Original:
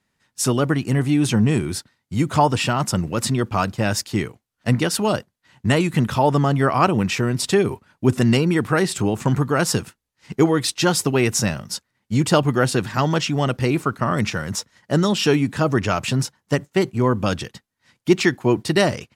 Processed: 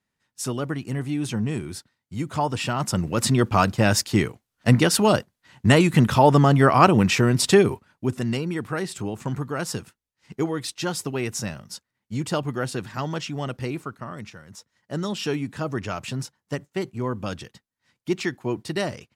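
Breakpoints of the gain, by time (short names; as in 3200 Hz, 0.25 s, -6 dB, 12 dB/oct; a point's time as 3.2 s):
2.35 s -8.5 dB
3.42 s +2 dB
7.58 s +2 dB
8.15 s -9 dB
13.66 s -9 dB
14.45 s -19.5 dB
15.06 s -9 dB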